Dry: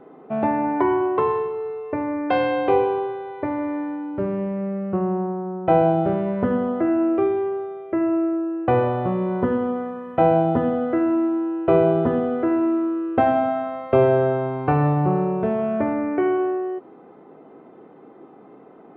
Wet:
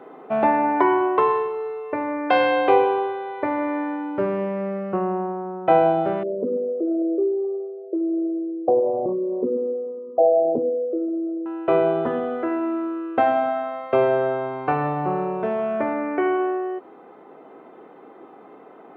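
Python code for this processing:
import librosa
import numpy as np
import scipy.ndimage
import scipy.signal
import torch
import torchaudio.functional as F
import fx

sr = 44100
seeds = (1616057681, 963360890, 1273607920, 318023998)

y = fx.envelope_sharpen(x, sr, power=3.0, at=(6.23, 11.46))
y = fx.rider(y, sr, range_db=10, speed_s=2.0)
y = fx.highpass(y, sr, hz=610.0, slope=6)
y = y * 10.0 ** (3.0 / 20.0)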